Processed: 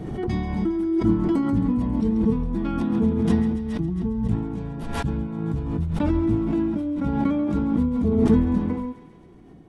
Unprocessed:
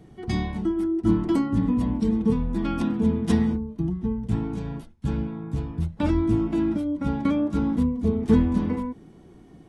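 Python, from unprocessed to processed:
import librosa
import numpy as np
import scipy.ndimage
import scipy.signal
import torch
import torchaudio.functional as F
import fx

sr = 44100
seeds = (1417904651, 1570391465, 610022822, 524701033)

p1 = fx.high_shelf(x, sr, hz=2400.0, db=-9.0)
p2 = p1 + fx.echo_thinned(p1, sr, ms=136, feedback_pct=74, hz=970.0, wet_db=-11, dry=0)
y = fx.pre_swell(p2, sr, db_per_s=33.0)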